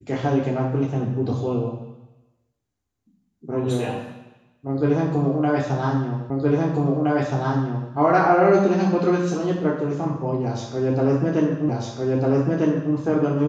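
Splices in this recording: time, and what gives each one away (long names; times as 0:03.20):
0:06.30: the same again, the last 1.62 s
0:11.69: the same again, the last 1.25 s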